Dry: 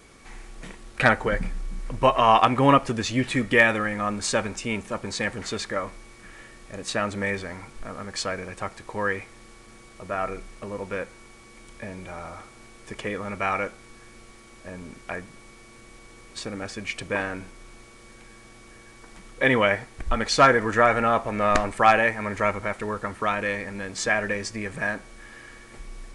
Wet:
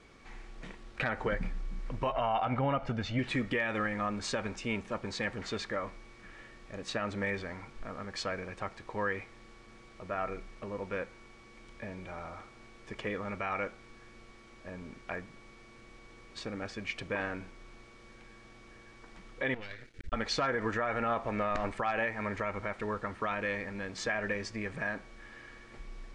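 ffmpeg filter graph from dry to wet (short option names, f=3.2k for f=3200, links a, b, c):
-filter_complex "[0:a]asettb=1/sr,asplit=3[a][b][c];[a]atrim=end=2.124[d];[b]atrim=start=2.12:end=3.19,asetpts=PTS-STARTPTS,afade=t=in:d=0.004:c=qsin,afade=t=out:st=1.066:d=0.004:c=qsin,aemphasis=mode=reproduction:type=75kf,aecho=1:1:1.4:0.54,atrim=end_sample=47187[e];[c]atrim=start=3.186[f];[d][e]acrossfade=d=0.004:c1=hsin:c2=qsin[g];[g][f]acrossfade=d=0.004:c1=qsin:c2=hsin,asettb=1/sr,asplit=3[h][i][j];[h]atrim=end=19.544[k];[i]atrim=start=19.54:end=20.13,asetpts=PTS-STARTPTS,afade=t=in:d=0.004:c=qsin,afade=t=out:st=0.586:d=0.004:c=qsin,acompressor=threshold=-30dB:ratio=3:attack=3.2:release=140:knee=1:detection=peak,asuperstop=centerf=860:order=8:qfactor=0.96,aeval=exprs='max(val(0),0)':c=same[l];[j]atrim=start=20.126[m];[k][l]acrossfade=d=0.004:c1=hsin:c2=qsin[n];[n][m]acrossfade=d=0.004:c1=qsin:c2=hsin,lowpass=4.9k,alimiter=limit=-16dB:level=0:latency=1:release=88,volume=-5.5dB"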